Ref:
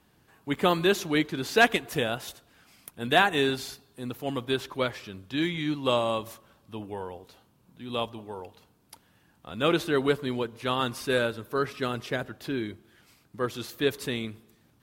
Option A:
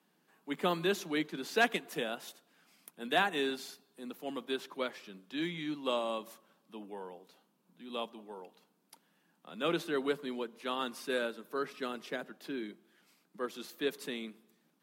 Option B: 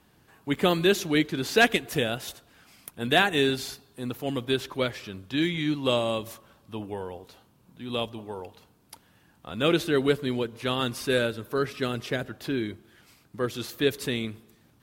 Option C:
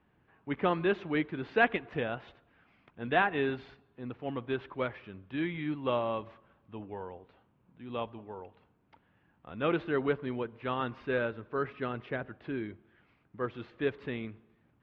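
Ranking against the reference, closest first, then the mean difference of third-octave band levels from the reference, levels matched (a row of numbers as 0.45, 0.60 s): B, A, C; 1.5, 2.5, 5.5 dB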